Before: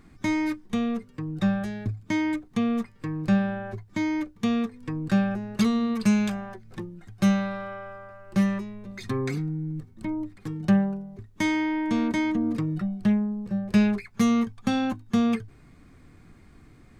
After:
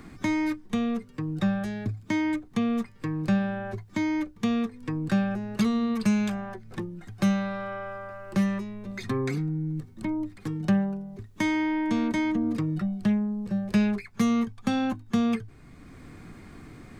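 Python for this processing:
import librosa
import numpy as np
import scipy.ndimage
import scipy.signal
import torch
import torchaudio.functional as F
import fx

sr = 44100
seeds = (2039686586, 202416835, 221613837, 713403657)

y = fx.band_squash(x, sr, depth_pct=40)
y = F.gain(torch.from_numpy(y), -1.0).numpy()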